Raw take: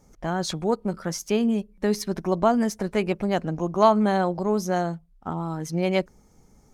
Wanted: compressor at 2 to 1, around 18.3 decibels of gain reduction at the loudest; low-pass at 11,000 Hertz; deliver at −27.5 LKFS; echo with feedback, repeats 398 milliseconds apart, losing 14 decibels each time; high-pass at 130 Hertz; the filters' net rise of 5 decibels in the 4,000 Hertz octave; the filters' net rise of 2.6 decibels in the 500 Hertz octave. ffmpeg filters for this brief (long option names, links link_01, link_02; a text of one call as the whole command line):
ffmpeg -i in.wav -af "highpass=130,lowpass=11000,equalizer=frequency=500:width_type=o:gain=3.5,equalizer=frequency=4000:width_type=o:gain=6.5,acompressor=threshold=-45dB:ratio=2,aecho=1:1:398|796:0.2|0.0399,volume=10dB" out.wav